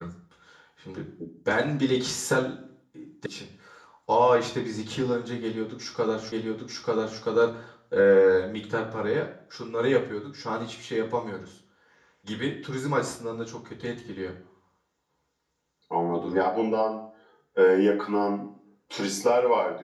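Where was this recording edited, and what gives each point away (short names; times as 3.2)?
3.26 sound cut off
6.32 repeat of the last 0.89 s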